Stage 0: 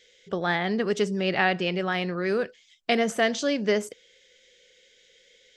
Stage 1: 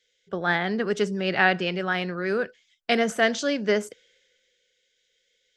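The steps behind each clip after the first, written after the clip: peaking EQ 1.5 kHz +6 dB 0.33 oct; three bands expanded up and down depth 40%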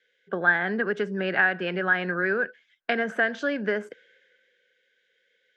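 three-band isolator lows -16 dB, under 150 Hz, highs -19 dB, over 3 kHz; compression 4:1, threshold -28 dBFS, peak gain reduction 11.5 dB; peaking EQ 1.6 kHz +13 dB 0.24 oct; trim +3.5 dB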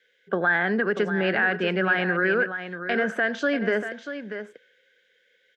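peak limiter -17 dBFS, peak gain reduction 8.5 dB; delay 638 ms -10 dB; trim +4 dB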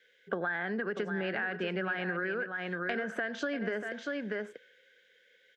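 compression 10:1, threshold -30 dBFS, peak gain reduction 13 dB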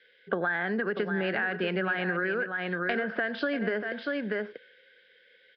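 resampled via 11.025 kHz; trim +4.5 dB

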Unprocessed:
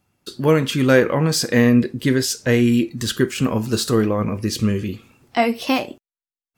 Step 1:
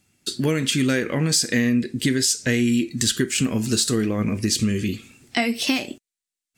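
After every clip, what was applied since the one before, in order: graphic EQ 250/1000/2000/4000/8000 Hz +4/-8/+6/+4/+12 dB; compression 4:1, threshold -18 dBFS, peak gain reduction 9.5 dB; peaking EQ 520 Hz -4 dB 0.28 oct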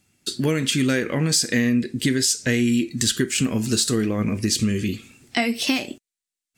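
no audible change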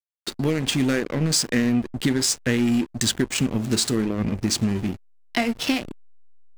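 hysteresis with a dead band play -21.5 dBFS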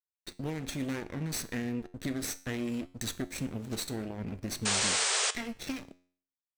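comb filter that takes the minimum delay 0.5 ms; painted sound noise, 4.65–5.31 s, 370–9200 Hz -16 dBFS; feedback comb 90 Hz, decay 0.5 s, harmonics all, mix 50%; trim -8 dB

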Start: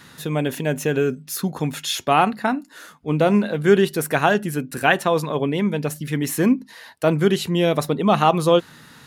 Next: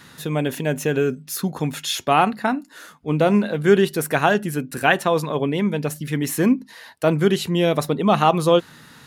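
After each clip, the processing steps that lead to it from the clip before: no audible change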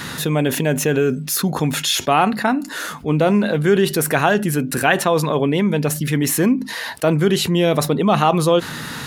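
level flattener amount 50%; trim -1.5 dB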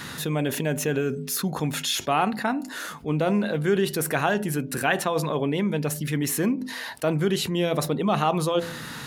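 de-hum 84.51 Hz, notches 11; trim -7 dB

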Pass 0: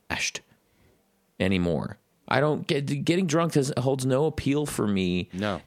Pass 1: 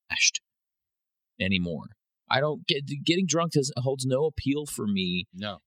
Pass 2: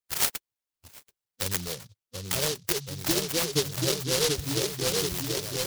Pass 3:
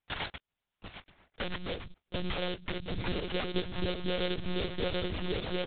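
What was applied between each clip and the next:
expander on every frequency bin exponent 2; high-order bell 4.2 kHz +9 dB; trim +1.5 dB
static phaser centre 1.1 kHz, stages 8; on a send: delay with an opening low-pass 733 ms, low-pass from 750 Hz, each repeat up 1 oct, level -3 dB; on the sum: delay time shaken by noise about 4.5 kHz, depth 0.3 ms
compression 5:1, threshold -37 dBFS, peak gain reduction 15.5 dB; echo from a far wall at 170 m, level -23 dB; monotone LPC vocoder at 8 kHz 180 Hz; trim +8.5 dB

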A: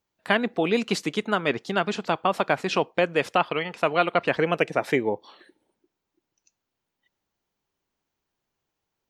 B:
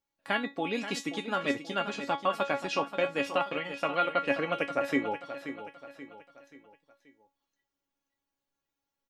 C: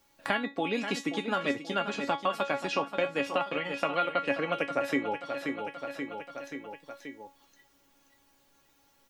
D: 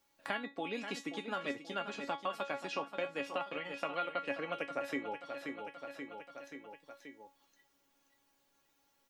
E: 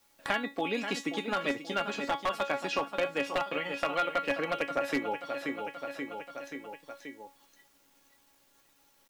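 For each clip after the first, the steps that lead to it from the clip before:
feedback comb 280 Hz, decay 0.2 s, harmonics all, mix 90%; feedback delay 531 ms, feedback 43%, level -11 dB; trim +5 dB
three bands compressed up and down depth 70%
bass shelf 150 Hz -7 dB; trim -8 dB
one-sided wavefolder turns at -29.5 dBFS; word length cut 12-bit, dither none; trim +7.5 dB

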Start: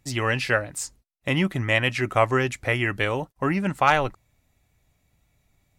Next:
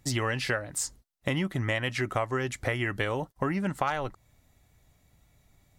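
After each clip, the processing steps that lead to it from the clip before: peaking EQ 2.5 kHz -6.5 dB 0.24 oct; compression 5:1, threshold -30 dBFS, peak gain reduction 15 dB; trim +3.5 dB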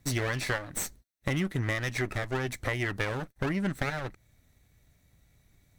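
comb filter that takes the minimum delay 0.49 ms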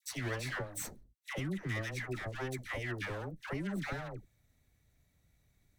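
phase dispersion lows, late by 113 ms, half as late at 800 Hz; trim -7.5 dB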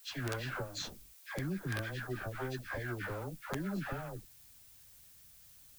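knee-point frequency compression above 1.1 kHz 1.5:1; integer overflow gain 27 dB; added noise blue -59 dBFS

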